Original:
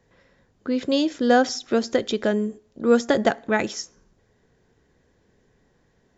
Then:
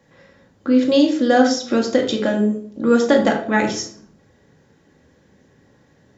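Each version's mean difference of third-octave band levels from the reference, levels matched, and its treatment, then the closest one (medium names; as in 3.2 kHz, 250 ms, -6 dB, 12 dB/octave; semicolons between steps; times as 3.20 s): 4.5 dB: high-pass 91 Hz 12 dB/octave; in parallel at +0.5 dB: compression, threshold -31 dBFS, peak gain reduction 17.5 dB; on the sum: simulated room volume 730 m³, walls furnished, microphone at 2.3 m; trim -1 dB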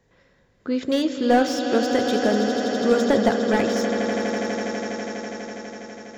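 8.5 dB: de-hum 58.7 Hz, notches 31; on a send: echo with a slow build-up 82 ms, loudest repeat 8, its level -12.5 dB; on the sum: slew-rate limiter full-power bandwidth 170 Hz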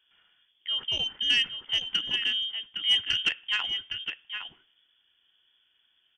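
11.5 dB: delay 812 ms -8.5 dB; frequency inversion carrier 3.4 kHz; transformer saturation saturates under 1.8 kHz; trim -6.5 dB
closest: first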